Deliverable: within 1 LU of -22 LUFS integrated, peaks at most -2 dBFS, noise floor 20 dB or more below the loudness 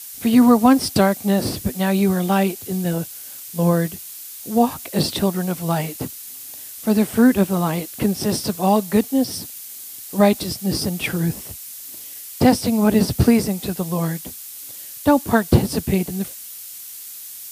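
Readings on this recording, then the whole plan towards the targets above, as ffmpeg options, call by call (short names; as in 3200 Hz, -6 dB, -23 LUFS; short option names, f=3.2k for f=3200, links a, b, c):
noise floor -36 dBFS; noise floor target -40 dBFS; loudness -19.5 LUFS; peak -2.0 dBFS; loudness target -22.0 LUFS
-> -af "afftdn=nr=6:nf=-36"
-af "volume=-2.5dB"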